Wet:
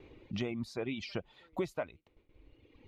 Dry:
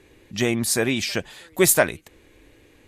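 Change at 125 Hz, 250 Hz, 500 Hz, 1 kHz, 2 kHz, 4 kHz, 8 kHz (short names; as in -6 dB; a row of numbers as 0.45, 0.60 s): -13.0, -13.5, -15.5, -16.0, -20.5, -18.5, -36.5 dB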